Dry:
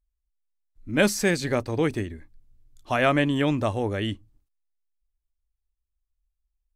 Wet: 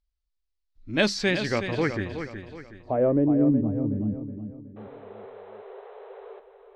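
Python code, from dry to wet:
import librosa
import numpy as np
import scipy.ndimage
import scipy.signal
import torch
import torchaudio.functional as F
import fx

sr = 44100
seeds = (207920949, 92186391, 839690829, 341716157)

p1 = fx.wow_flutter(x, sr, seeds[0], rate_hz=2.1, depth_cents=84.0)
p2 = fx.spec_paint(p1, sr, seeds[1], shape='noise', start_s=4.76, length_s=1.64, low_hz=380.0, high_hz=4100.0, level_db=-19.0)
p3 = fx.filter_sweep_lowpass(p2, sr, from_hz=4600.0, to_hz=220.0, start_s=1.1, end_s=3.72, q=2.4)
p4 = p3 + fx.echo_feedback(p3, sr, ms=370, feedback_pct=39, wet_db=-9, dry=0)
y = F.gain(torch.from_numpy(p4), -2.5).numpy()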